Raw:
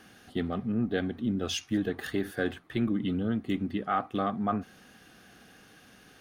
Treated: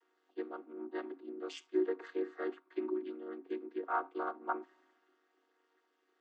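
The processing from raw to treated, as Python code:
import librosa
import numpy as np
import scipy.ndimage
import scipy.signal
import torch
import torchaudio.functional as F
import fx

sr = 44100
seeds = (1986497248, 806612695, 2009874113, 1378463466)

y = fx.chord_vocoder(x, sr, chord='minor triad', root=51)
y = scipy.signal.sosfilt(scipy.signal.cheby1(6, 9, 270.0, 'highpass', fs=sr, output='sos'), y)
y = fx.band_widen(y, sr, depth_pct=40)
y = y * 10.0 ** (4.0 / 20.0)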